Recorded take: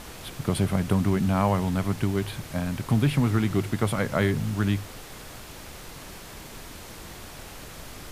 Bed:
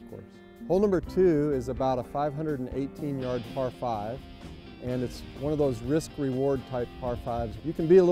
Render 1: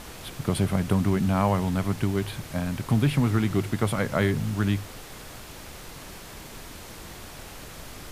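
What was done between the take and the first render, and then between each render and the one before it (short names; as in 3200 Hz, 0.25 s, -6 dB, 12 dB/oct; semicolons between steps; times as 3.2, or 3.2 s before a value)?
nothing audible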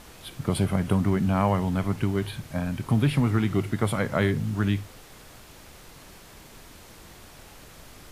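noise print and reduce 6 dB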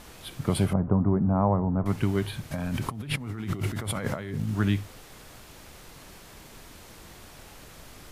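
0.73–1.86 LPF 1100 Hz 24 dB/oct; 2.51–4.49 negative-ratio compressor -32 dBFS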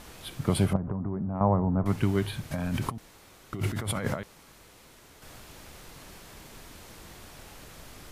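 0.76–1.41 compressor 10:1, threshold -27 dBFS; 2.98–3.53 room tone; 4.23–5.22 room tone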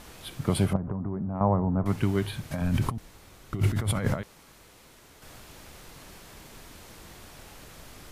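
2.61–4.22 low shelf 140 Hz +9.5 dB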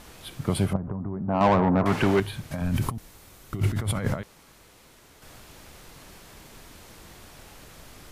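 1.28–2.2 overdrive pedal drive 25 dB, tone 1900 Hz, clips at -10.5 dBFS; 2.76–3.6 high shelf 8500 Hz +9 dB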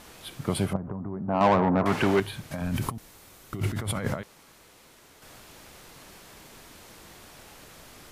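low shelf 120 Hz -8 dB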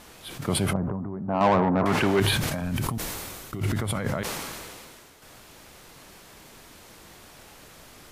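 sustainer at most 26 dB/s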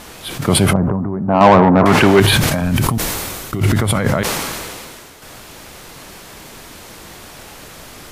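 maximiser +12 dB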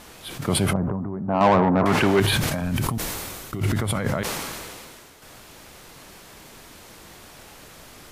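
gain -8.5 dB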